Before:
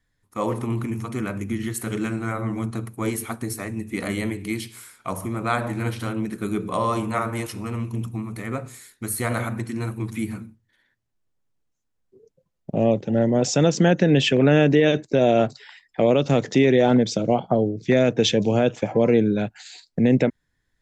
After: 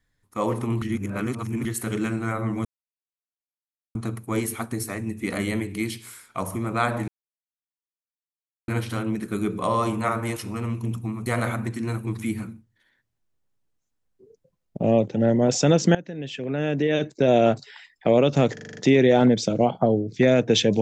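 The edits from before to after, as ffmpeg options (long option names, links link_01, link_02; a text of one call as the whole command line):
ffmpeg -i in.wav -filter_complex "[0:a]asplit=13[link_01][link_02][link_03][link_04][link_05][link_06][link_07][link_08][link_09][link_10][link_11][link_12][link_13];[link_01]atrim=end=0.822[link_14];[link_02]atrim=start=0.818:end=1.652,asetpts=PTS-STARTPTS,areverse[link_15];[link_03]atrim=start=1.648:end=2.65,asetpts=PTS-STARTPTS,afade=type=out:start_time=0.998:duration=0.004:curve=hsin,apad=pad_dur=1.3[link_16];[link_04]atrim=start=2.65:end=5.78,asetpts=PTS-STARTPTS,afade=type=in:duration=0.004:curve=hsin,afade=type=out:start_time=3.126:duration=0.004:curve=hsin,apad=pad_dur=1.6[link_17];[link_05]atrim=start=5.78:end=8.362,asetpts=PTS-STARTPTS,afade=type=in:duration=0.004:curve=hsin[link_18];[link_06]atrim=start=9.188:end=13.88,asetpts=PTS-STARTPTS,afade=type=out:start_time=4.688:duration=0.004:curve=hsin:silence=0.125893[link_19];[link_07]atrim=start=13.88:end=16.502,asetpts=PTS-STARTPTS,afade=type=in:duration=1.36:curve=qua:silence=0.125893[link_20];[link_08]atrim=start=16.458:end=16.502[link_21];[link_09]atrim=start=16.458:end=16.502[link_22];[link_10]atrim=start=16.458:end=16.502[link_23];[link_11]atrim=start=16.458:end=16.502[link_24];[link_12]atrim=start=16.458:end=16.502[link_25];[link_13]atrim=start=16.458[link_26];[link_14][link_15]acrossfade=duration=0.004:curve1=hsin:curve2=hsin[link_27];[link_16][link_17][link_18]concat=n=3:v=0:a=1[link_28];[link_27][link_28]acrossfade=duration=0.004:curve1=hsin:curve2=hsin[link_29];[link_19][link_20]concat=n=2:v=0:a=1[link_30];[link_29][link_30]acrossfade=duration=0.004:curve1=hsin:curve2=hsin[link_31];[link_31][link_21]acrossfade=duration=0.004:curve1=hsin:curve2=hsin[link_32];[link_32][link_22]acrossfade=duration=0.004:curve1=hsin:curve2=hsin[link_33];[link_33][link_23]acrossfade=duration=0.004:curve1=hsin:curve2=hsin[link_34];[link_34][link_24]acrossfade=duration=0.004:curve1=hsin:curve2=hsin[link_35];[link_35][link_25]acrossfade=duration=0.004:curve1=hsin:curve2=hsin[link_36];[link_36][link_26]acrossfade=duration=0.004:curve1=hsin:curve2=hsin" out.wav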